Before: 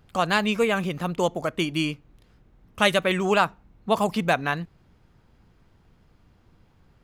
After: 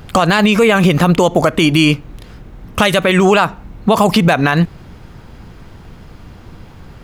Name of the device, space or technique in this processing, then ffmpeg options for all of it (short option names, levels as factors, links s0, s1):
loud club master: -af "acompressor=threshold=0.0631:ratio=2.5,asoftclip=type=hard:threshold=0.188,alimiter=level_in=14.1:limit=0.891:release=50:level=0:latency=1,volume=0.891"